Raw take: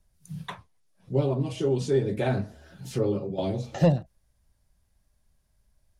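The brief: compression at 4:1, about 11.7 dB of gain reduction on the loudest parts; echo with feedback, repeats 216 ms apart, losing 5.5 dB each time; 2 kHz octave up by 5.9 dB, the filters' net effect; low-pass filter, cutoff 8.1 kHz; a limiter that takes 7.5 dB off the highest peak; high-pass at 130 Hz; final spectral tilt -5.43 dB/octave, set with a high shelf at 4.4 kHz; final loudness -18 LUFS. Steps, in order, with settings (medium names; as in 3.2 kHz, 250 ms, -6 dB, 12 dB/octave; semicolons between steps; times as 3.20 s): high-pass 130 Hz; low-pass 8.1 kHz; peaking EQ 2 kHz +7 dB; treble shelf 4.4 kHz +3 dB; compression 4:1, threshold -29 dBFS; peak limiter -25.5 dBFS; feedback delay 216 ms, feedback 53%, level -5.5 dB; trim +17.5 dB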